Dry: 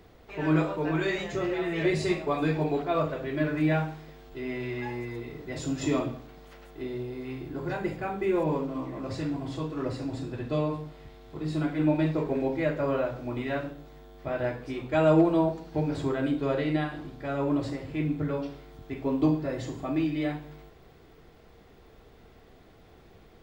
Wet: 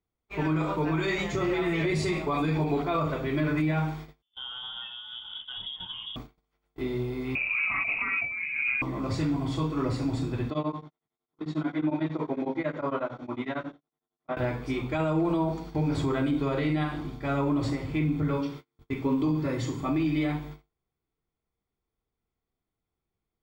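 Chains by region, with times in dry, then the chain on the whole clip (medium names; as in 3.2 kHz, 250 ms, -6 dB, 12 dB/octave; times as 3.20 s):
4.22–6.16 s: compression 8:1, threshold -35 dBFS + static phaser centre 310 Hz, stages 6 + frequency inversion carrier 3.5 kHz
7.35–8.82 s: frequency inversion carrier 2.7 kHz + compressor with a negative ratio -34 dBFS + band-stop 1.8 kHz, Q 5.4
10.50–14.37 s: cabinet simulation 220–5500 Hz, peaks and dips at 430 Hz -4 dB, 2.5 kHz -7 dB, 4.8 kHz -9 dB + tremolo of two beating tones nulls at 11 Hz
18.34–19.86 s: peaking EQ 700 Hz -12.5 dB 0.21 oct + hum notches 50/100/150/200 Hz
whole clip: gate -44 dBFS, range -37 dB; comb 0.9 ms, depth 37%; peak limiter -23 dBFS; trim +4 dB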